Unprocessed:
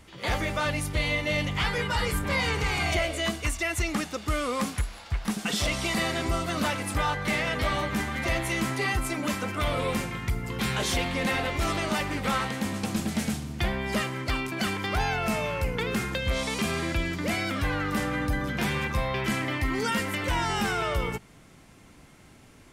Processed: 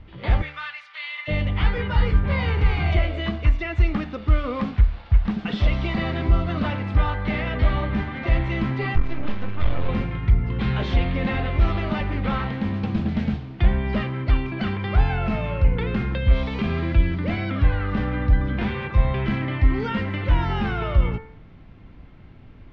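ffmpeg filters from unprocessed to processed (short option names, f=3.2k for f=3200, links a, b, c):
-filter_complex "[0:a]asplit=3[a][b][c];[a]afade=t=out:st=0.41:d=0.02[d];[b]highpass=f=1.2k:w=0.5412,highpass=f=1.2k:w=1.3066,afade=t=in:st=0.41:d=0.02,afade=t=out:st=1.27:d=0.02[e];[c]afade=t=in:st=1.27:d=0.02[f];[d][e][f]amix=inputs=3:normalize=0,asettb=1/sr,asplit=3[g][h][i];[g]atrim=end=8.954[j];[h]atrim=start=8.95:end=9.89,asetpts=PTS-STARTPTS,afade=t=in:d=0.004:c=qsin,afade=t=out:st=0.936:d=0.004:c=qsin,aeval=exprs='max(val(0),0)':c=same[k];[i]atrim=start=9.886[l];[j][k]acrossfade=d=0.004:c1=hsin:c2=qsin[m];[m][l]acrossfade=d=0.004:c1=qsin:c2=hsin,lowpass=f=4k:w=0.5412,lowpass=f=4k:w=1.3066,aemphasis=mode=reproduction:type=bsi,bandreject=f=73.75:t=h:w=4,bandreject=f=147.5:t=h:w=4,bandreject=f=221.25:t=h:w=4,bandreject=f=295:t=h:w=4,bandreject=f=368.75:t=h:w=4,bandreject=f=442.5:t=h:w=4,bandreject=f=516.25:t=h:w=4,bandreject=f=590:t=h:w=4,bandreject=f=663.75:t=h:w=4,bandreject=f=737.5:t=h:w=4,bandreject=f=811.25:t=h:w=4,bandreject=f=885:t=h:w=4,bandreject=f=958.75:t=h:w=4,bandreject=f=1.0325k:t=h:w=4,bandreject=f=1.10625k:t=h:w=4,bandreject=f=1.18k:t=h:w=4,bandreject=f=1.25375k:t=h:w=4,bandreject=f=1.3275k:t=h:w=4,bandreject=f=1.40125k:t=h:w=4,bandreject=f=1.475k:t=h:w=4,bandreject=f=1.54875k:t=h:w=4,bandreject=f=1.6225k:t=h:w=4,bandreject=f=1.69625k:t=h:w=4,bandreject=f=1.77k:t=h:w=4,bandreject=f=1.84375k:t=h:w=4,bandreject=f=1.9175k:t=h:w=4,bandreject=f=1.99125k:t=h:w=4,bandreject=f=2.065k:t=h:w=4,bandreject=f=2.13875k:t=h:w=4,bandreject=f=2.2125k:t=h:w=4,bandreject=f=2.28625k:t=h:w=4,bandreject=f=2.36k:t=h:w=4,bandreject=f=2.43375k:t=h:w=4,bandreject=f=2.5075k:t=h:w=4,bandreject=f=2.58125k:t=h:w=4"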